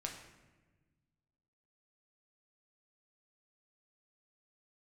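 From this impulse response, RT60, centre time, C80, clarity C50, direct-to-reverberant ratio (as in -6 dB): 1.3 s, 33 ms, 8.0 dB, 6.0 dB, 0.5 dB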